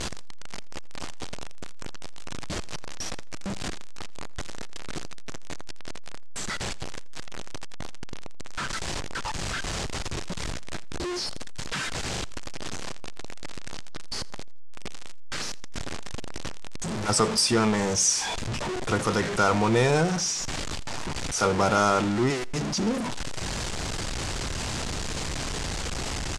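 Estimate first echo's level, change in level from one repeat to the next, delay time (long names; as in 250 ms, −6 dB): −23.0 dB, −11.0 dB, 83 ms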